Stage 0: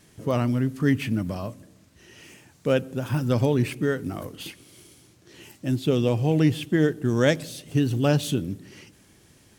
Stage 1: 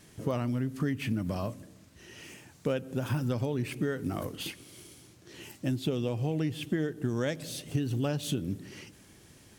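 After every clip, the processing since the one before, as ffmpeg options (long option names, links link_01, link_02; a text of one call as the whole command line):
ffmpeg -i in.wav -af "acompressor=threshold=-26dB:ratio=12" out.wav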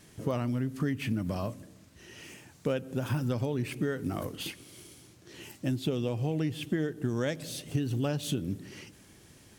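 ffmpeg -i in.wav -af anull out.wav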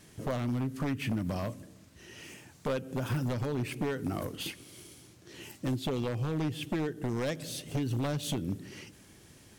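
ffmpeg -i in.wav -af "aeval=exprs='0.0596*(abs(mod(val(0)/0.0596+3,4)-2)-1)':channel_layout=same" out.wav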